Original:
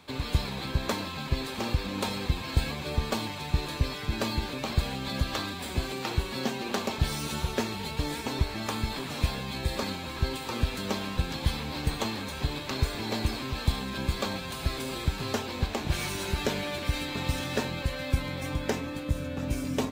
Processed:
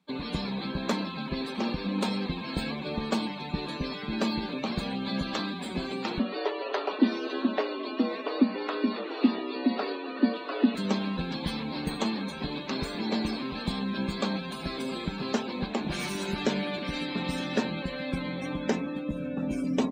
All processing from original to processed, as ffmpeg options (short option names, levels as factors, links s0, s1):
-filter_complex "[0:a]asettb=1/sr,asplit=3[s0][s1][s2];[s0]atrim=end=6.194[s3];[s1]atrim=start=6.19:end=10.75,asetpts=PTS-STARTPTS,afade=t=in:d=0.004:c=qsin,afade=t=out:st=4.556:d=0.004:c=qsin,afreqshift=190,lowpass=4100[s4];[s2]atrim=start=10.746[s5];[s3][s4]acrossfade=d=0.004:c1=hsin:c2=qsin[s6];[s6][s5]acrossfade=d=0.004:c1=qsin:c2=hsin,afftdn=nr=22:nf=-42,lowshelf=f=140:t=q:w=3:g=-10.5"